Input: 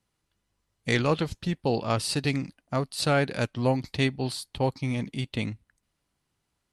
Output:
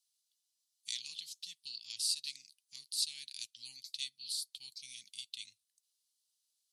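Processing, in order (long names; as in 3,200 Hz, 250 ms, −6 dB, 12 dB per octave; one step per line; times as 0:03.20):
inverse Chebyshev high-pass filter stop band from 1,500 Hz, stop band 50 dB
in parallel at 0 dB: downward compressor, threshold −47 dBFS, peak gain reduction 18.5 dB
on the sum: level −3 dB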